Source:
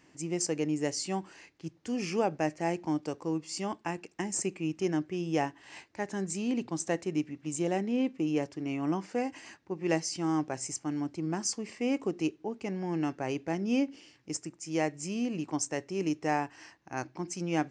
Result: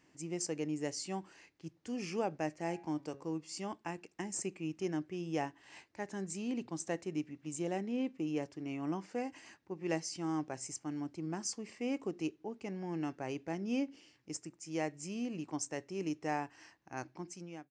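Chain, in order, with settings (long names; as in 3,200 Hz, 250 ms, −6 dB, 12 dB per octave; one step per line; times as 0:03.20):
fade-out on the ending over 0.58 s
0:02.57–0:03.28: hum removal 138.2 Hz, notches 20
level −6.5 dB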